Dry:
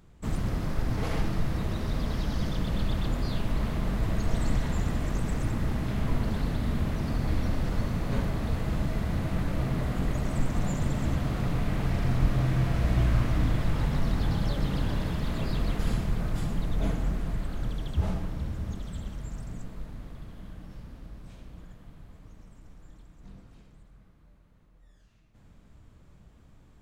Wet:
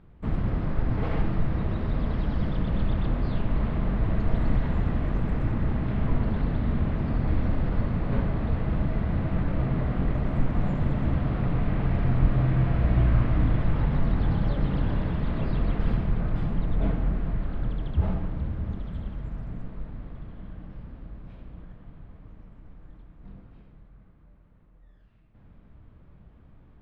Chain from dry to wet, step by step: distance through air 410 m; trim +3 dB

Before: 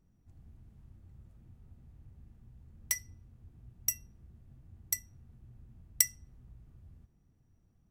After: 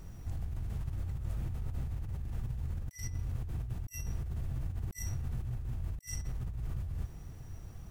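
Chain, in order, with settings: peaking EQ 230 Hz -10 dB 1.2 oct; compressor with a negative ratio -58 dBFS, ratio -1; trim +15.5 dB

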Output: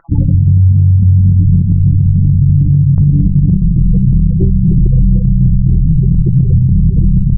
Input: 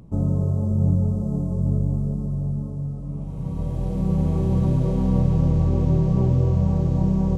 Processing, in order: random holes in the spectrogram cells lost 39%; low-pass 1 kHz 12 dB/octave; bass shelf 140 Hz +5 dB; comb 6 ms, depth 36%; feedback delay 286 ms, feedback 18%, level -6 dB; reverberation RT60 0.55 s, pre-delay 7 ms, DRR 5.5 dB; spectral gate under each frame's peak -15 dB strong; hum notches 50/100/150/200 Hz; peaking EQ 240 Hz -7 dB 0.68 oct, from 2.98 s 990 Hz, from 4.07 s 180 Hz; compression 8:1, threshold -29 dBFS, peak gain reduction 18 dB; loudness maximiser +26.5 dB; loudspeaker Doppler distortion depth 0.12 ms; trim -1 dB

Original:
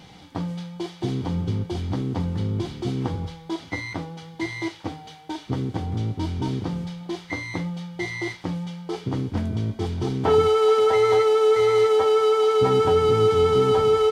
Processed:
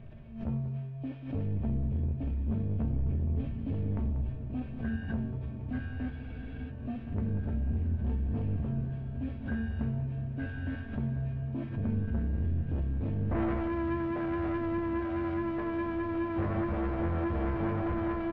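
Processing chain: knee-point frequency compression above 3 kHz 1.5:1; tilt EQ -4.5 dB/octave; saturation -14 dBFS, distortion -11 dB; dynamic bell 2.5 kHz, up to +6 dB, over -41 dBFS, Q 1; feedback comb 290 Hz, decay 0.29 s, harmonics all, mix 80%; on a send: echo that smears into a reverb 1256 ms, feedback 72%, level -11 dB; on the sum: tape speed -23%; reverse; upward compressor, threshold -40 dBFS; reverse; delay 189 ms -12.5 dB; spectral freeze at 6.14 s, 0.56 s; swell ahead of each attack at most 97 dB/s; trim -1.5 dB

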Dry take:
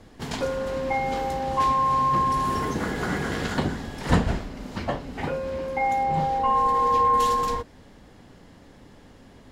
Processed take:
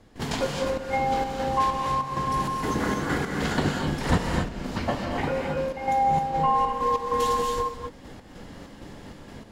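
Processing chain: compression 1.5:1, threshold -40 dBFS, peak gain reduction 9.5 dB; trance gate ".xx.x.xx" 97 bpm -12 dB; gated-style reverb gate 290 ms rising, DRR 1.5 dB; trim +6.5 dB

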